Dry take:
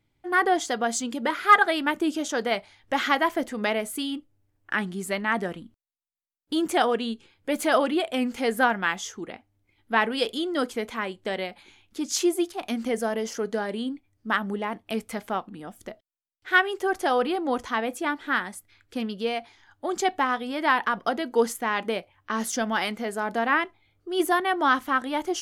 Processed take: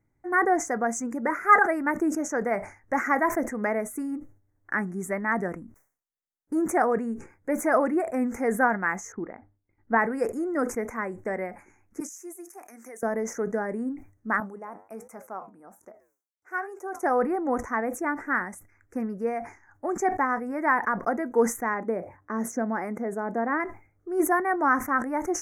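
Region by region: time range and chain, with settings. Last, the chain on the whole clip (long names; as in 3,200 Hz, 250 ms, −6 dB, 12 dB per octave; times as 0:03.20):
0:09.12–0:09.99: high-frequency loss of the air 470 metres + transient designer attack +5 dB, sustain −11 dB
0:12.00–0:13.03: spectral tilt +4.5 dB per octave + downward compressor 4 to 1, threshold −32 dBFS + four-pole ladder high-pass 230 Hz, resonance 30%
0:14.40–0:17.03: high-pass filter 660 Hz 6 dB per octave + parametric band 1,900 Hz −12 dB 0.55 octaves + flanger 1.3 Hz, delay 5.6 ms, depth 5 ms, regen −85%
0:21.74–0:23.60: high-pass filter 380 Hz 6 dB per octave + tilt shelving filter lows +8.5 dB, about 670 Hz
whole clip: elliptic band-stop filter 2,000–6,100 Hz, stop band 80 dB; high-shelf EQ 4,700 Hz −5.5 dB; level that may fall only so fast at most 140 dB per second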